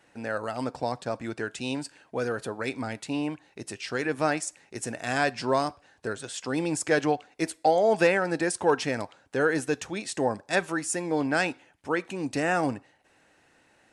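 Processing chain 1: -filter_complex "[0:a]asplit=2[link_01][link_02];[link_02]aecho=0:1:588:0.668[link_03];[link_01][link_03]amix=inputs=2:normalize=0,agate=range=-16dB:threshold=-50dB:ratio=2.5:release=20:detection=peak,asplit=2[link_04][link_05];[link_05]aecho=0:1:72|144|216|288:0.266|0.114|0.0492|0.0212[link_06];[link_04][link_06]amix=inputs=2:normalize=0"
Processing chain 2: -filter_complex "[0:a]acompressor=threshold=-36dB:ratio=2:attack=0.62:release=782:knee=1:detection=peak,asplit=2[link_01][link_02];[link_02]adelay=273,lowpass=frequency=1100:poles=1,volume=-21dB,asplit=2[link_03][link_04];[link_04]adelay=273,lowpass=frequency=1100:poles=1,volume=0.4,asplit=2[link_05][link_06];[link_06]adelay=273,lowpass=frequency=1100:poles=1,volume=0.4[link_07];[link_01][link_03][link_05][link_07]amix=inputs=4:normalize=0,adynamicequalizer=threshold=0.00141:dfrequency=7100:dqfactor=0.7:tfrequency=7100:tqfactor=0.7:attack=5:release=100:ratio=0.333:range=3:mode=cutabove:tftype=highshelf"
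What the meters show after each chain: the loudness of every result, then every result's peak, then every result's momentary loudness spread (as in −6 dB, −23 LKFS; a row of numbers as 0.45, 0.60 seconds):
−26.5, −38.5 LKFS; −7.5, −21.0 dBFS; 10, 8 LU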